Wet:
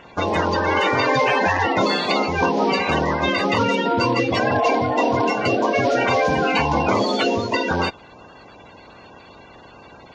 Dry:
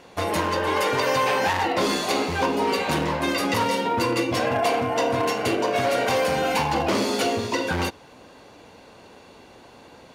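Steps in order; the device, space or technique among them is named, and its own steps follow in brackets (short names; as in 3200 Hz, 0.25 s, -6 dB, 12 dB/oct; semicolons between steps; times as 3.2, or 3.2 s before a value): clip after many re-uploads (LPF 5400 Hz 24 dB/oct; bin magnitudes rounded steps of 30 dB); gain +4.5 dB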